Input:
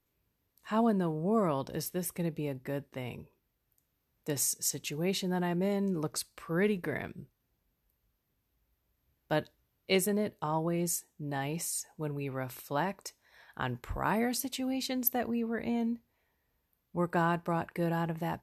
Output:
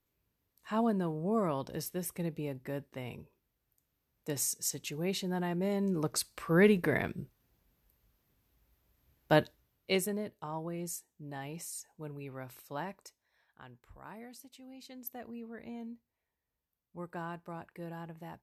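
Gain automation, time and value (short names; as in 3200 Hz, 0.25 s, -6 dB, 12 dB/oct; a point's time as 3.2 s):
5.59 s -2.5 dB
6.49 s +5 dB
9.4 s +5 dB
10.3 s -7.5 dB
12.93 s -7.5 dB
13.64 s -18.5 dB
14.63 s -18.5 dB
15.34 s -12 dB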